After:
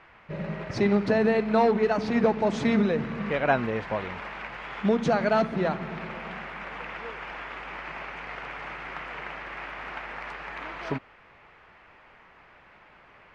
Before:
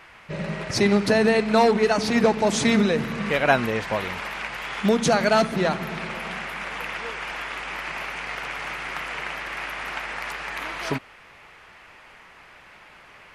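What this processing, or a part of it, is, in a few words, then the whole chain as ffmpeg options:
through cloth: -af "lowpass=6400,highshelf=frequency=3500:gain=-15.5,volume=-3dB"

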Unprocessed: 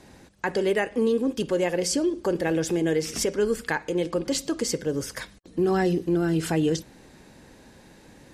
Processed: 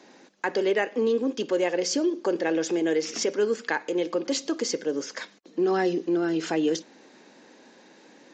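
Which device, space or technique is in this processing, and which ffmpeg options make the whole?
Bluetooth headset: -af "highpass=frequency=240:width=0.5412,highpass=frequency=240:width=1.3066,aresample=16000,aresample=44100" -ar 16000 -c:a sbc -b:a 64k

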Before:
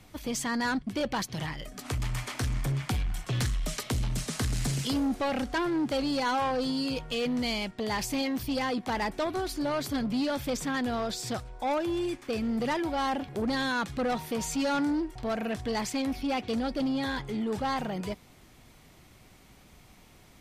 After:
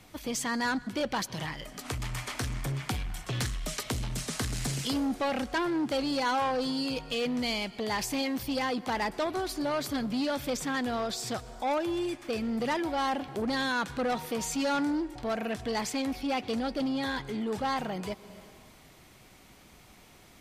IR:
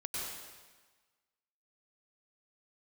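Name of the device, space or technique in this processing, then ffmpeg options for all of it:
ducked reverb: -filter_complex "[0:a]asplit=3[link_01][link_02][link_03];[1:a]atrim=start_sample=2205[link_04];[link_02][link_04]afir=irnorm=-1:irlink=0[link_05];[link_03]apad=whole_len=899728[link_06];[link_05][link_06]sidechaincompress=threshold=-46dB:ratio=4:attack=10:release=224,volume=-9dB[link_07];[link_01][link_07]amix=inputs=2:normalize=0,lowshelf=frequency=180:gain=-6"

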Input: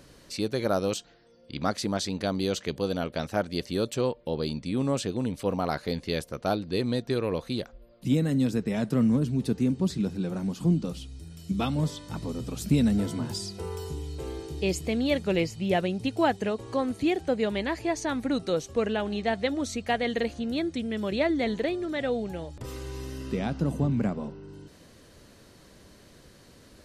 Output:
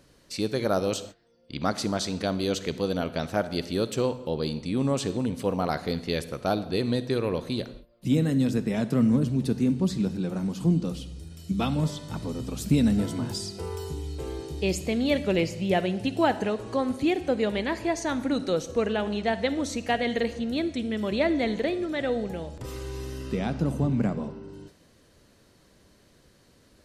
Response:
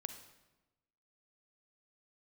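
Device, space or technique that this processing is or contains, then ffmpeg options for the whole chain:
keyed gated reverb: -filter_complex "[0:a]asplit=3[link_01][link_02][link_03];[1:a]atrim=start_sample=2205[link_04];[link_02][link_04]afir=irnorm=-1:irlink=0[link_05];[link_03]apad=whole_len=1183917[link_06];[link_05][link_06]sidechaingate=range=-29dB:threshold=-47dB:ratio=16:detection=peak,volume=5dB[link_07];[link_01][link_07]amix=inputs=2:normalize=0,volume=-6dB"

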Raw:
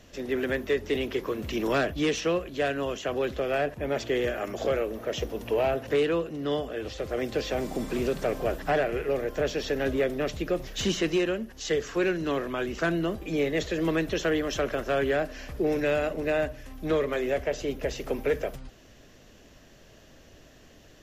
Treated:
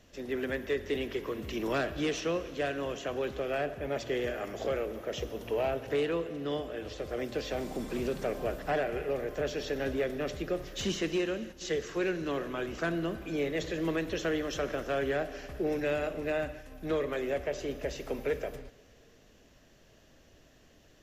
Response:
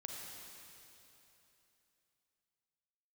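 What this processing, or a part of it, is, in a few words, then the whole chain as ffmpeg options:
keyed gated reverb: -filter_complex "[0:a]asplit=3[link_01][link_02][link_03];[1:a]atrim=start_sample=2205[link_04];[link_02][link_04]afir=irnorm=-1:irlink=0[link_05];[link_03]apad=whole_len=927266[link_06];[link_05][link_06]sidechaingate=range=-11dB:threshold=-40dB:ratio=16:detection=peak,volume=-5dB[link_07];[link_01][link_07]amix=inputs=2:normalize=0,volume=-7.5dB"

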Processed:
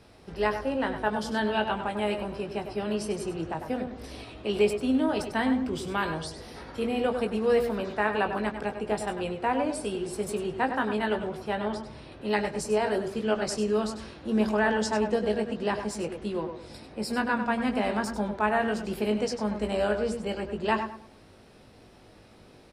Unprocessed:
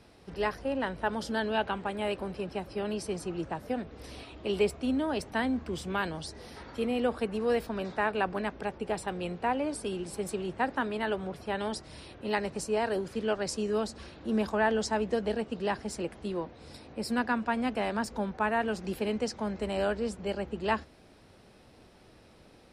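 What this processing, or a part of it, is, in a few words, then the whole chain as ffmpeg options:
slapback doubling: -filter_complex "[0:a]asettb=1/sr,asplit=3[link_01][link_02][link_03];[link_01]atrim=end=11.554[link_04];[link_02]atrim=start=11.55:end=12.12,asetpts=PTS-STARTPTS,afade=type=in:duration=0.004:curve=qsin,afade=type=out:start_time=0.566:duration=0.004:curve=qsin,aemphasis=mode=reproduction:type=75kf[link_05];[link_03]atrim=start=12.116[link_06];[link_04][link_05]acrossfade=duration=0.004:curve1=hsin:curve2=qsin[link_07];[link_07][link_06]acrossfade=duration=0.004:curve1=qsin:curve2=hsin,asplit=3[link_08][link_09][link_10];[link_09]adelay=19,volume=-7dB[link_11];[link_10]adelay=97,volume=-11.5dB[link_12];[link_08][link_11][link_12]amix=inputs=3:normalize=0,asplit=2[link_13][link_14];[link_14]adelay=105,lowpass=frequency=1700:poles=1,volume=-8.5dB,asplit=2[link_15][link_16];[link_16]adelay=105,lowpass=frequency=1700:poles=1,volume=0.3,asplit=2[link_17][link_18];[link_18]adelay=105,lowpass=frequency=1700:poles=1,volume=0.3,asplit=2[link_19][link_20];[link_20]adelay=105,lowpass=frequency=1700:poles=1,volume=0.3[link_21];[link_13][link_15][link_17][link_19][link_21]amix=inputs=5:normalize=0,volume=1.5dB"

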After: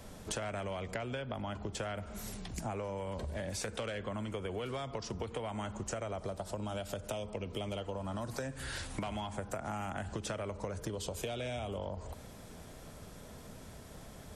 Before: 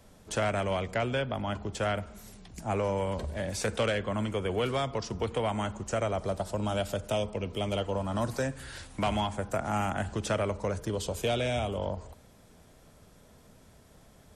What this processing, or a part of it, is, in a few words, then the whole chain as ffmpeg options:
serial compression, leveller first: -af "acompressor=threshold=-31dB:ratio=2.5,acompressor=threshold=-43dB:ratio=6,volume=6.5dB"

